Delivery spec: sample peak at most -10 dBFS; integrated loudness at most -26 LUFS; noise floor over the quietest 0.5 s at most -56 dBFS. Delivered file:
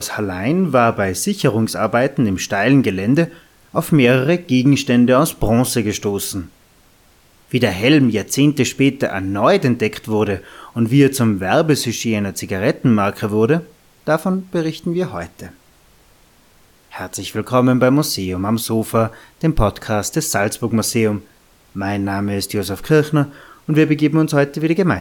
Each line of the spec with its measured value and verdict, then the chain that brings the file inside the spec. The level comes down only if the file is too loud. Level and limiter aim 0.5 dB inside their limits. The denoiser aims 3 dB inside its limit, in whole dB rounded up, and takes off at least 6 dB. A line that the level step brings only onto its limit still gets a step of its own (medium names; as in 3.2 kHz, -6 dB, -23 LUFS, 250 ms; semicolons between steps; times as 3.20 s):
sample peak -2.5 dBFS: fail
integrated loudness -17.0 LUFS: fail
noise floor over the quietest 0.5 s -52 dBFS: fail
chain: trim -9.5 dB